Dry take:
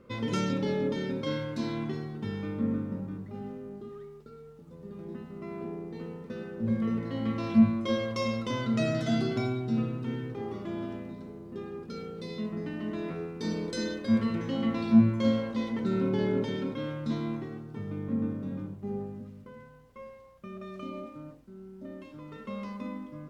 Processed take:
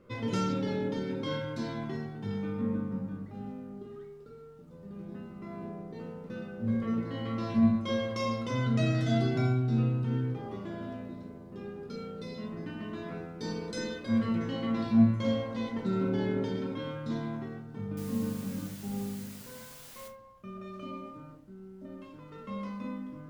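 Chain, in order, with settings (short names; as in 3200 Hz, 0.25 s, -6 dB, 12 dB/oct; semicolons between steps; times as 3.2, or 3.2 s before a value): 17.97–20.08 requantised 8-bit, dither triangular; on a send: reverb RT60 0.35 s, pre-delay 6 ms, DRR 1.5 dB; on the sum: gain -3.5 dB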